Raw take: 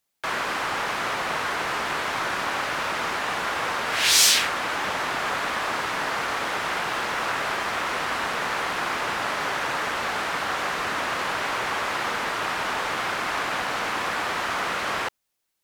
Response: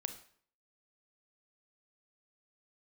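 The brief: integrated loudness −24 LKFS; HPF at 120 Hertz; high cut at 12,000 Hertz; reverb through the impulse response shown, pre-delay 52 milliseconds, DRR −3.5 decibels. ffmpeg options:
-filter_complex "[0:a]highpass=120,lowpass=12000,asplit=2[link_01][link_02];[1:a]atrim=start_sample=2205,adelay=52[link_03];[link_02][link_03]afir=irnorm=-1:irlink=0,volume=4.5dB[link_04];[link_01][link_04]amix=inputs=2:normalize=0,volume=-4dB"

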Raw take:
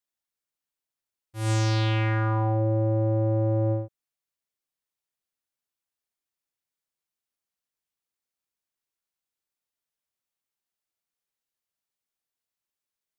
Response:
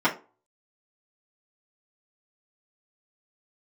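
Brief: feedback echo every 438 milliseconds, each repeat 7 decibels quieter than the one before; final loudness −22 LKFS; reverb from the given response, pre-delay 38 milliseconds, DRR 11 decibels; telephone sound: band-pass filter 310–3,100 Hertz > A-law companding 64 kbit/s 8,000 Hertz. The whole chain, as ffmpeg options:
-filter_complex "[0:a]aecho=1:1:438|876|1314|1752|2190:0.447|0.201|0.0905|0.0407|0.0183,asplit=2[link_01][link_02];[1:a]atrim=start_sample=2205,adelay=38[link_03];[link_02][link_03]afir=irnorm=-1:irlink=0,volume=-27dB[link_04];[link_01][link_04]amix=inputs=2:normalize=0,highpass=310,lowpass=3100,volume=8dB" -ar 8000 -c:a pcm_alaw

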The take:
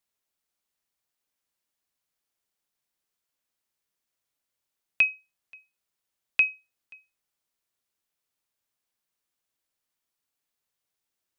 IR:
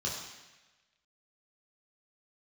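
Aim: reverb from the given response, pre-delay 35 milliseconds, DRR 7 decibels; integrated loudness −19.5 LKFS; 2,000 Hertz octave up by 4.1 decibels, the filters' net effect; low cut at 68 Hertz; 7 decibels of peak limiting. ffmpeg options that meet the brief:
-filter_complex "[0:a]highpass=68,equalizer=frequency=2000:width_type=o:gain=6,alimiter=limit=-13.5dB:level=0:latency=1,asplit=2[link_01][link_02];[1:a]atrim=start_sample=2205,adelay=35[link_03];[link_02][link_03]afir=irnorm=-1:irlink=0,volume=-11.5dB[link_04];[link_01][link_04]amix=inputs=2:normalize=0,volume=5dB"

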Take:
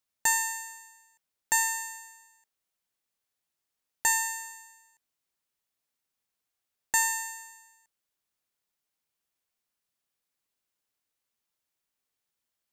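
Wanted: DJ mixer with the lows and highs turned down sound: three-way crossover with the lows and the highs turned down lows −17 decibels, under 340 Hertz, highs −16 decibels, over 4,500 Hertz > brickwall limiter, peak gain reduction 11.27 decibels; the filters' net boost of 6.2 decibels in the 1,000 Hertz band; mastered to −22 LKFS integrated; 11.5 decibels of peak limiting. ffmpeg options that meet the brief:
ffmpeg -i in.wav -filter_complex "[0:a]equalizer=frequency=1000:width_type=o:gain=7,alimiter=limit=-22dB:level=0:latency=1,acrossover=split=340 4500:gain=0.141 1 0.158[link_01][link_02][link_03];[link_01][link_02][link_03]amix=inputs=3:normalize=0,volume=21.5dB,alimiter=limit=-13.5dB:level=0:latency=1" out.wav

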